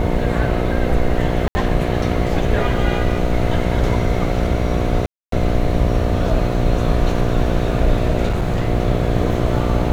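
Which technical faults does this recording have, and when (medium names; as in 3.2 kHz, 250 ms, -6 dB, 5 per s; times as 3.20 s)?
buzz 60 Hz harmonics 12 -21 dBFS
1.48–1.55 s: dropout 70 ms
5.06–5.32 s: dropout 263 ms
8.26–8.69 s: clipped -14 dBFS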